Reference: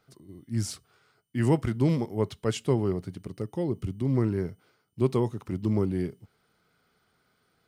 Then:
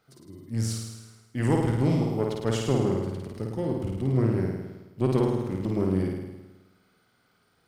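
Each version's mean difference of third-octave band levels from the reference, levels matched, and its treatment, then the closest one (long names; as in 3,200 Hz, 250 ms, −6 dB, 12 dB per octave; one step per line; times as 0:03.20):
6.0 dB: one-sided soft clipper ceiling −26 dBFS
on a send: flutter between parallel walls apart 9.1 metres, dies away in 1.1 s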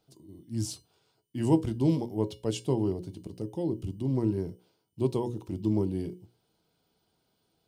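2.5 dB: flat-topped bell 1,600 Hz −11.5 dB 1.2 octaves
mains-hum notches 60/120/180/240/300/360/420/480/540 Hz
tuned comb filter 320 Hz, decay 0.22 s, harmonics odd, mix 70%
level +7.5 dB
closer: second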